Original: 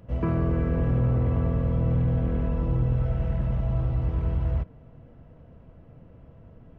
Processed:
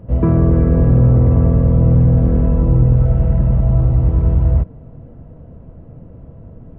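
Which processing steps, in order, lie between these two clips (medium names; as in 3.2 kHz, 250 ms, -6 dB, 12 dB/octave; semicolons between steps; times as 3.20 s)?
tilt shelf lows +8.5 dB, about 1.4 kHz; trim +4 dB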